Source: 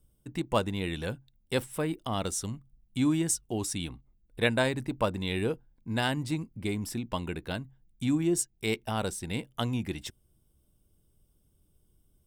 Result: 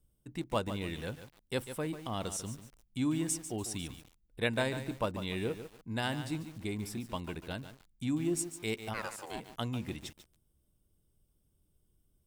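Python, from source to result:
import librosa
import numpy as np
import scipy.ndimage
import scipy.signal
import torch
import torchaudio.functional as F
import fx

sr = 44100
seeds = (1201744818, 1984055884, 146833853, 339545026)

y = fx.ring_mod(x, sr, carrier_hz=fx.line((8.93, 1400.0), (9.39, 480.0)), at=(8.93, 9.39), fade=0.02)
y = fx.echo_crushed(y, sr, ms=145, feedback_pct=35, bits=7, wet_db=-10.0)
y = y * librosa.db_to_amplitude(-5.5)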